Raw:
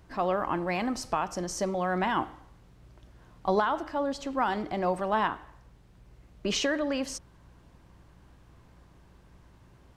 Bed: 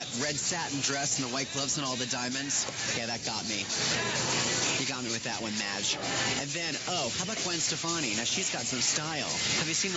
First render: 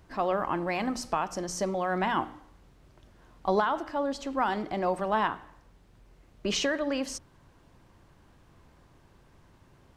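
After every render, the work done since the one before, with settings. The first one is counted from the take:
hum removal 60 Hz, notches 5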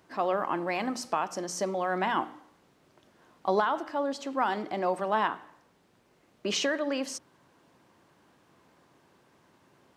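high-pass filter 210 Hz 12 dB per octave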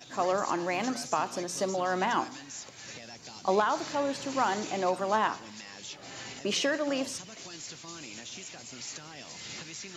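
mix in bed −13 dB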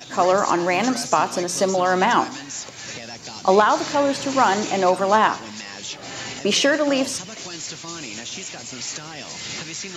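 level +10.5 dB

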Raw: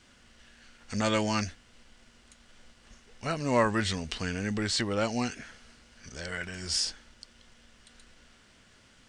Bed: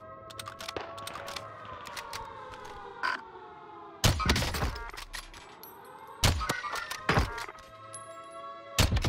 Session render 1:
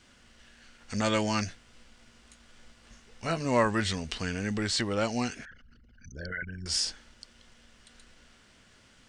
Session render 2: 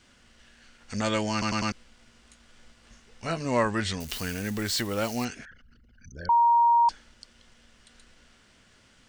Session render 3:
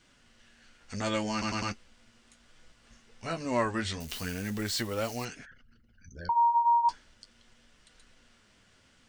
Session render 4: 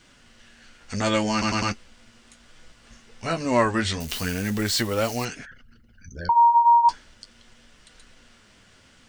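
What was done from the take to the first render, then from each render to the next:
0:01.46–0:03.45: double-tracking delay 18 ms −7 dB; 0:05.45–0:06.66: spectral envelope exaggerated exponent 3
0:01.32: stutter in place 0.10 s, 4 plays; 0:04.00–0:05.25: spike at every zero crossing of −30.5 dBFS; 0:06.29–0:06.89: beep over 940 Hz −16.5 dBFS
flanger 0.38 Hz, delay 6 ms, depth 7.6 ms, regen −40%
level +8 dB

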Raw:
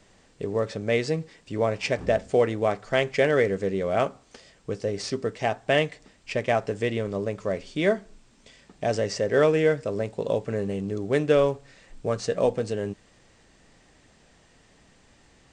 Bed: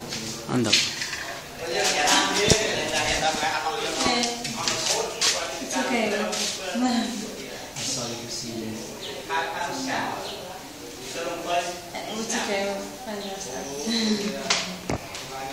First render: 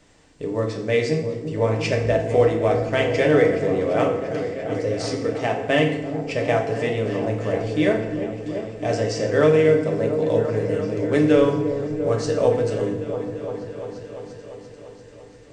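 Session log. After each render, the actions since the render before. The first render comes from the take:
echo whose low-pass opens from repeat to repeat 344 ms, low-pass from 400 Hz, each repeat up 1 octave, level −6 dB
feedback delay network reverb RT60 0.88 s, low-frequency decay 1.2×, high-frequency decay 0.75×, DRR 1 dB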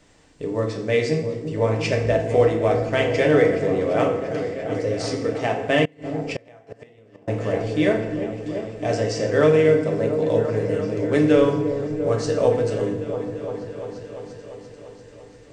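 0:05.85–0:07.28: gate with flip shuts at −15 dBFS, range −28 dB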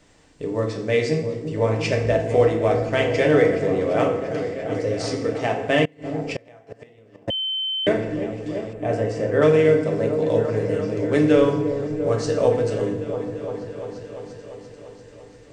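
0:07.30–0:07.87: beep over 3,080 Hz −22.5 dBFS
0:08.73–0:09.42: parametric band 5,300 Hz −14 dB 1.5 octaves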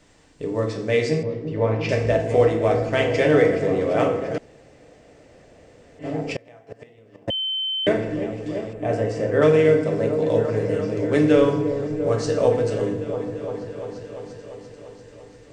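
0:01.23–0:01.89: high-frequency loss of the air 180 metres
0:04.38–0:05.99: fill with room tone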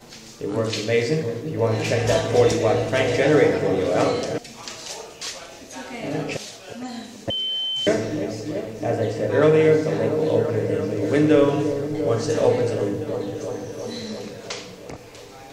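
mix in bed −10 dB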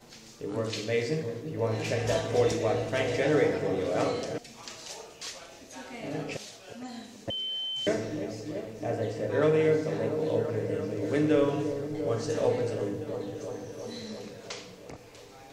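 level −8 dB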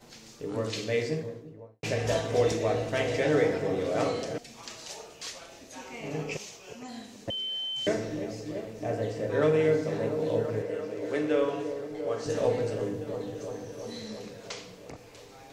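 0:00.96–0:01.83: fade out and dull
0:05.78–0:06.88: EQ curve with evenly spaced ripples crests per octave 0.76, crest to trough 7 dB
0:10.62–0:12.26: bass and treble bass −13 dB, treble −4 dB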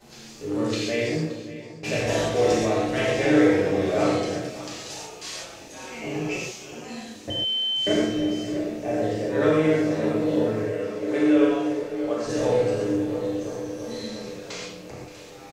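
single-tap delay 574 ms −16 dB
reverb whose tail is shaped and stops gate 160 ms flat, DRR −4.5 dB

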